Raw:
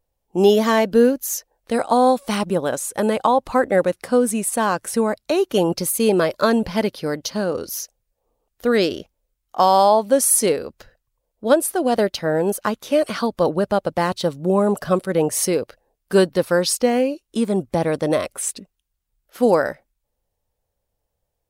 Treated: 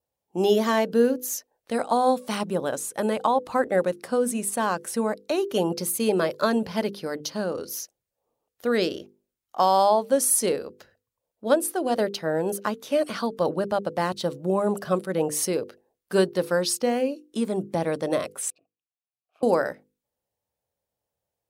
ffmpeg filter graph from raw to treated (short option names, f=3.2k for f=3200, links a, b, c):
-filter_complex "[0:a]asettb=1/sr,asplit=3[a][b][c];[a]atrim=end=18.504[d];[b]atrim=start=18.5:end=19.43,asetpts=PTS-STARTPTS,afade=t=in:d=0.004:c=qsin,afade=t=out:st=0.926:d=0.004:c=qsin,equalizer=f=2.5k:t=o:w=0.42:g=4.5,aeval=exprs='val(0)*sin(2*PI*83*n/s)':c=same,asplit=3[e][f][g];[e]bandpass=f=730:t=q:w=8,volume=0dB[h];[f]bandpass=f=1.09k:t=q:w=8,volume=-6dB[i];[g]bandpass=f=2.44k:t=q:w=8,volume=-9dB[j];[h][i][j]amix=inputs=3:normalize=0[k];[c]atrim=start=19.426[l];[d][k]acrossfade=d=0.004:c1=hsin:c2=qsin[m];[m][l]acrossfade=d=0.004:c1=qsin:c2=hsin,highpass=110,bandreject=f=50:t=h:w=6,bandreject=f=100:t=h:w=6,bandreject=f=150:t=h:w=6,bandreject=f=200:t=h:w=6,bandreject=f=250:t=h:w=6,bandreject=f=300:t=h:w=6,bandreject=f=350:t=h:w=6,bandreject=f=400:t=h:w=6,bandreject=f=450:t=h:w=6,bandreject=f=500:t=h:w=6,adynamicequalizer=threshold=0.00501:dfrequency=2200:dqfactor=5:tfrequency=2200:tqfactor=5:attack=5:release=100:ratio=0.375:range=1.5:mode=cutabove:tftype=bell,volume=-5dB"